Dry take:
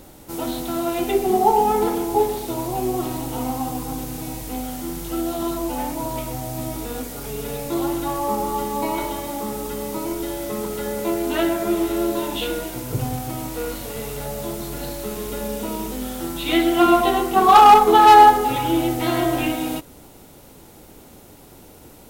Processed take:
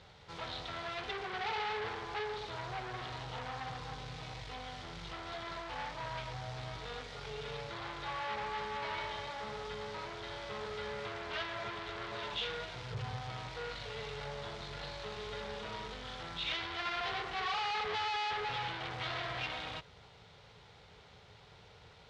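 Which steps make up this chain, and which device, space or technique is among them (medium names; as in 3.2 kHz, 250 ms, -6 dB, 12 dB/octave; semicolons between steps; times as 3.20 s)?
scooped metal amplifier (valve stage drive 29 dB, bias 0.6; cabinet simulation 76–3900 Hz, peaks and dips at 110 Hz +6 dB, 170 Hz +5 dB, 430 Hz +9 dB, 2.7 kHz -4 dB; amplifier tone stack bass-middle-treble 10-0-10); trim +4 dB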